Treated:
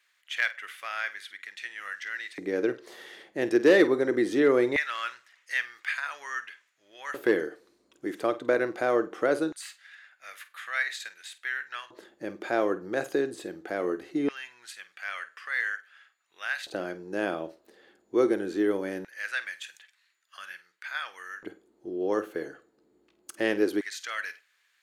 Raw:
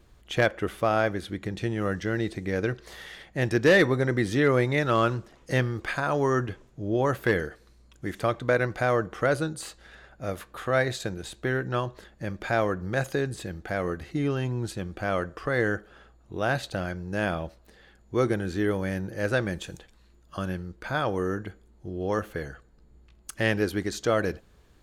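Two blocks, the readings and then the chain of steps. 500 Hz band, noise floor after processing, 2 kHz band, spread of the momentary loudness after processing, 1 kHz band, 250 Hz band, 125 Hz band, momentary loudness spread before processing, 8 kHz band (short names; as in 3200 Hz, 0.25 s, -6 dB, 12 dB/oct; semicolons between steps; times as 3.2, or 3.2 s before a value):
-1.5 dB, -70 dBFS, -1.0 dB, 17 LU, -6.0 dB, -1.5 dB, -20.5 dB, 13 LU, -3.5 dB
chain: flutter echo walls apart 8.5 m, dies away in 0.21 s; LFO high-pass square 0.21 Hz 330–1900 Hz; gain -4 dB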